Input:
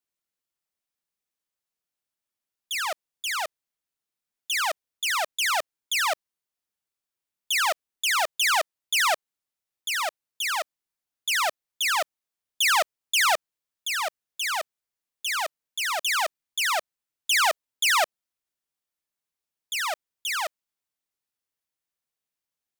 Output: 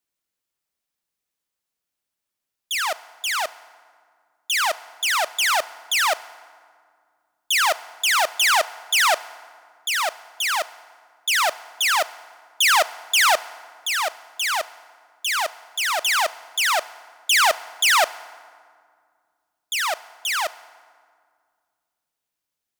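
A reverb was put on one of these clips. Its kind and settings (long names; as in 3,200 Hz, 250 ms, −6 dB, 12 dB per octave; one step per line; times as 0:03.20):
feedback delay network reverb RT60 2 s, low-frequency decay 1.6×, high-frequency decay 0.6×, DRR 16.5 dB
level +4.5 dB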